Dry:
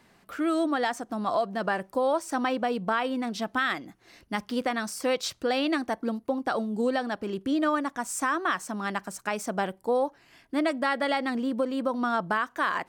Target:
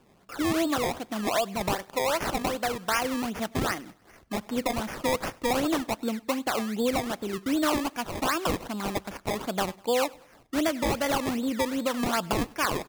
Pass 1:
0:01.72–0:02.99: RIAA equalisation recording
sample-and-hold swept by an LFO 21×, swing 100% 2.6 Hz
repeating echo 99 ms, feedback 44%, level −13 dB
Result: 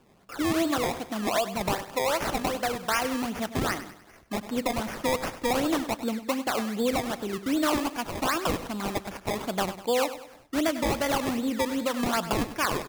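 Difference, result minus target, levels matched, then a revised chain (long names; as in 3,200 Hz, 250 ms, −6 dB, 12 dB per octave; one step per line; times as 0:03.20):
echo-to-direct +11 dB
0:01.72–0:02.99: RIAA equalisation recording
sample-and-hold swept by an LFO 21×, swing 100% 2.6 Hz
repeating echo 99 ms, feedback 44%, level −24 dB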